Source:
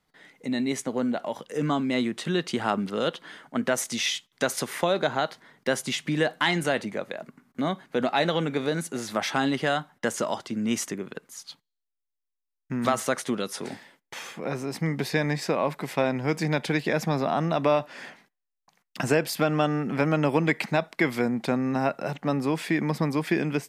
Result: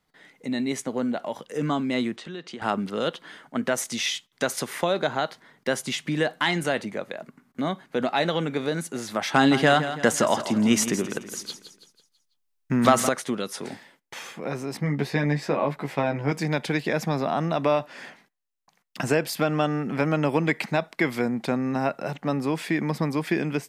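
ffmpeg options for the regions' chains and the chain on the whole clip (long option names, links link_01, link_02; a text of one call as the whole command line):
ffmpeg -i in.wav -filter_complex "[0:a]asettb=1/sr,asplit=3[link_01][link_02][link_03];[link_01]atrim=end=2.164[link_04];[link_02]atrim=start=2.16:end=2.62,asetpts=PTS-STARTPTS,afade=type=in:duration=0.004:curve=qsin,afade=type=out:start_time=0.456:duration=0.004:curve=qsin,highpass=160,lowpass=6100,acompressor=threshold=-41dB:ratio=2:attack=3.2:release=140:knee=1:detection=peak[link_05];[link_03]atrim=start=2.616[link_06];[link_04][link_05]acrossfade=duration=0.004:curve1=hsin:curve2=qsin[link_07];[link_07][link_06]acrossfade=duration=0.004:curve1=qsin:curve2=hsin,asettb=1/sr,asplit=3[link_08][link_09][link_10];[link_08]atrim=end=9.344[link_11];[link_09]atrim=start=9.34:end=13.09,asetpts=PTS-STARTPTS,afade=type=in:duration=0.004:curve=qsin,afade=type=out:start_time=3.746:duration=0.004:curve=qsin,acontrast=74,aecho=1:1:165|330|495|660|825:0.266|0.12|0.0539|0.0242|0.0109,atrim=end_sample=165375[link_12];[link_10]atrim=start=13.086[link_13];[link_11][link_12]acrossfade=duration=0.004:curve1=hsin:curve2=qsin[link_14];[link_14][link_13]acrossfade=duration=0.004:curve1=qsin:curve2=hsin,asettb=1/sr,asplit=3[link_15][link_16][link_17];[link_15]atrim=end=14.774[link_18];[link_16]atrim=start=14.77:end=16.32,asetpts=PTS-STARTPTS,afade=type=in:duration=0.004:curve=qsin,afade=type=out:start_time=1.546:duration=0.004:curve=qsin,highshelf=frequency=4200:gain=-10,asplit=2[link_19][link_20];[link_20]adelay=14,volume=-4dB[link_21];[link_19][link_21]amix=inputs=2:normalize=0,atrim=end_sample=68355[link_22];[link_17]atrim=start=16.316[link_23];[link_18][link_22]acrossfade=duration=0.004:curve1=hsin:curve2=qsin[link_24];[link_24][link_23]acrossfade=duration=0.004:curve1=qsin:curve2=hsin" out.wav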